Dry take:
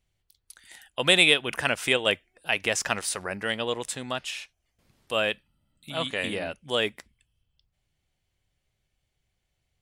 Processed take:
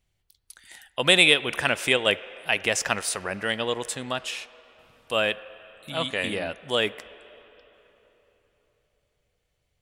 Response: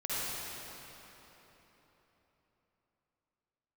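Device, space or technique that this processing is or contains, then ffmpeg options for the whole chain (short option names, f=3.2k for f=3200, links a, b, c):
filtered reverb send: -filter_complex "[0:a]asplit=2[a][b];[b]highpass=390,lowpass=3.5k[c];[1:a]atrim=start_sample=2205[d];[c][d]afir=irnorm=-1:irlink=0,volume=-22.5dB[e];[a][e]amix=inputs=2:normalize=0,volume=1.5dB"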